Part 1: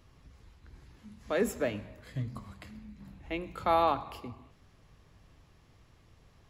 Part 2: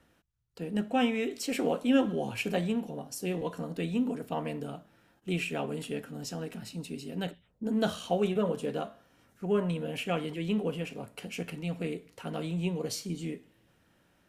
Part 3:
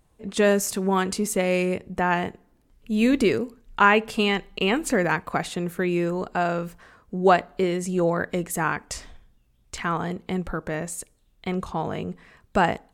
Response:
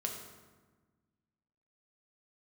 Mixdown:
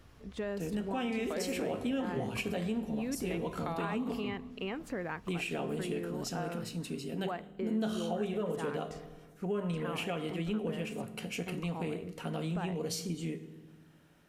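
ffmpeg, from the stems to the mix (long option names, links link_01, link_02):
-filter_complex "[0:a]acompressor=threshold=-34dB:ratio=6,volume=1dB[link_01];[1:a]volume=-1.5dB,asplit=3[link_02][link_03][link_04];[link_02]atrim=end=4.14,asetpts=PTS-STARTPTS,afade=type=out:start_time=4.136:duration=0.004:curve=hsin[link_05];[link_03]atrim=start=4.14:end=4.8,asetpts=PTS-STARTPTS,volume=0[link_06];[link_04]atrim=start=4.8,asetpts=PTS-STARTPTS,afade=type=in:duration=0.004:curve=hsin[link_07];[link_05][link_06][link_07]concat=n=3:v=0:a=1,asplit=2[link_08][link_09];[link_09]volume=-7.5dB[link_10];[2:a]equalizer=frequency=8500:width_type=o:width=1.8:gain=-13,volume=-12.5dB[link_11];[link_08][link_11]amix=inputs=2:normalize=0,alimiter=level_in=0.5dB:limit=-24dB:level=0:latency=1:release=109,volume=-0.5dB,volume=0dB[link_12];[3:a]atrim=start_sample=2205[link_13];[link_10][link_13]afir=irnorm=-1:irlink=0[link_14];[link_01][link_12][link_14]amix=inputs=3:normalize=0,acompressor=threshold=-34dB:ratio=2"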